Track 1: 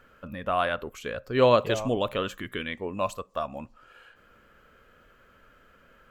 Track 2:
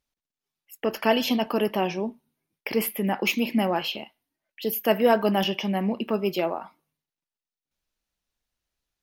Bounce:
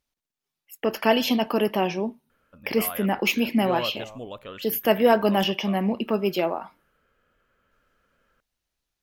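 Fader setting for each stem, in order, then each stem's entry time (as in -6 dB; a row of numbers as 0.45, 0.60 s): -11.0, +1.5 dB; 2.30, 0.00 s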